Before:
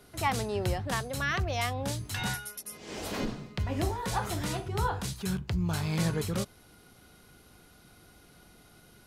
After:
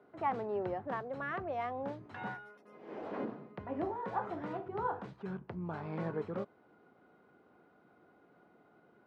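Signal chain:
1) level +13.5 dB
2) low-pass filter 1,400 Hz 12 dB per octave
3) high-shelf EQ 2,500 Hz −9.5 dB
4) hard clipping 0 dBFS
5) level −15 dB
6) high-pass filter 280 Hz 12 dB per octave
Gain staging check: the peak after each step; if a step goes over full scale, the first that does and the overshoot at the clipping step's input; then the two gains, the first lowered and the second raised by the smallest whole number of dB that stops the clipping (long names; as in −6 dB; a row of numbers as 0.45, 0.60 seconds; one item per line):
−4.0, −4.5, −5.0, −5.0, −20.0, −22.0 dBFS
no step passes full scale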